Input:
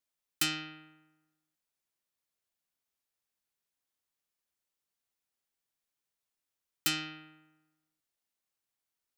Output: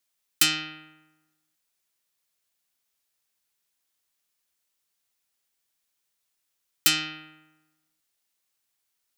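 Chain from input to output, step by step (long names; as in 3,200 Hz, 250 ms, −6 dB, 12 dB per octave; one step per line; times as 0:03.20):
tilt shelving filter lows −3.5 dB, about 1,500 Hz
level +7 dB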